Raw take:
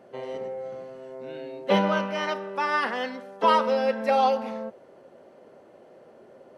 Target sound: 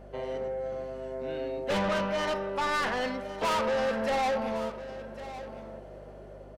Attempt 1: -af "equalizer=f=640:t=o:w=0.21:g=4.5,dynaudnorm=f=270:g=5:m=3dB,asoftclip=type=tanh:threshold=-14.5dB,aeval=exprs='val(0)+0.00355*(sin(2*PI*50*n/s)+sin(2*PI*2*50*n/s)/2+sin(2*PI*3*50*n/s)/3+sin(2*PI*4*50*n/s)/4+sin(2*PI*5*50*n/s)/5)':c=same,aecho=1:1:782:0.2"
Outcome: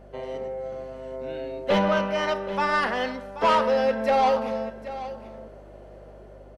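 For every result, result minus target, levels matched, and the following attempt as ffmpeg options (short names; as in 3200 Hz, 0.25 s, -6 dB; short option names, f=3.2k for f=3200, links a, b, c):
soft clip: distortion -9 dB; echo 0.325 s early
-af "equalizer=f=640:t=o:w=0.21:g=4.5,dynaudnorm=f=270:g=5:m=3dB,asoftclip=type=tanh:threshold=-25.5dB,aeval=exprs='val(0)+0.00355*(sin(2*PI*50*n/s)+sin(2*PI*2*50*n/s)/2+sin(2*PI*3*50*n/s)/3+sin(2*PI*4*50*n/s)/4+sin(2*PI*5*50*n/s)/5)':c=same,aecho=1:1:782:0.2"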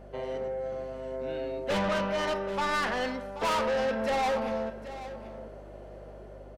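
echo 0.325 s early
-af "equalizer=f=640:t=o:w=0.21:g=4.5,dynaudnorm=f=270:g=5:m=3dB,asoftclip=type=tanh:threshold=-25.5dB,aeval=exprs='val(0)+0.00355*(sin(2*PI*50*n/s)+sin(2*PI*2*50*n/s)/2+sin(2*PI*3*50*n/s)/3+sin(2*PI*4*50*n/s)/4+sin(2*PI*5*50*n/s)/5)':c=same,aecho=1:1:1107:0.2"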